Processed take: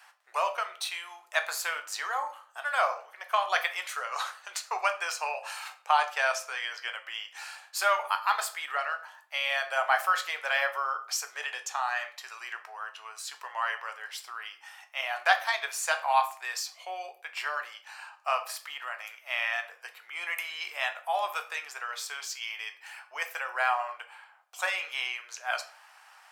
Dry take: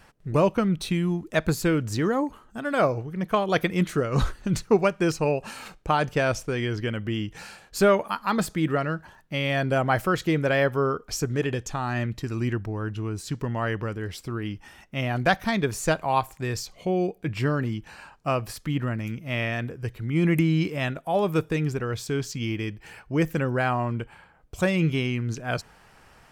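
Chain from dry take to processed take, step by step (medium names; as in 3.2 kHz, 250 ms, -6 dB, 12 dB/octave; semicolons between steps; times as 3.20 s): steep high-pass 740 Hz 36 dB/octave; reverberation RT60 0.45 s, pre-delay 7 ms, DRR 6 dB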